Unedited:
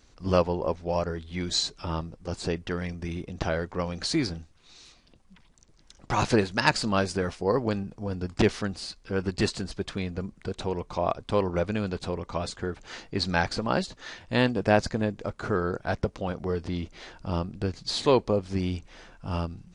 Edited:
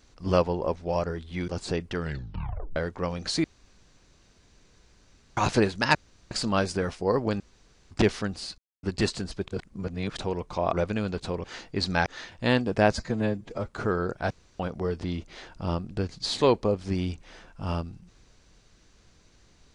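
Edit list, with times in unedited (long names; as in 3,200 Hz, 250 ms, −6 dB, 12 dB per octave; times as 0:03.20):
0:01.48–0:02.24: remove
0:02.75: tape stop 0.77 s
0:04.20–0:06.13: fill with room tone
0:06.71: splice in room tone 0.36 s
0:07.80–0:08.31: fill with room tone
0:08.98–0:09.23: silence
0:09.88–0:10.57: reverse
0:11.13–0:11.52: remove
0:12.23–0:12.83: remove
0:13.45–0:13.95: remove
0:14.84–0:15.33: time-stretch 1.5×
0:15.95–0:16.24: fill with room tone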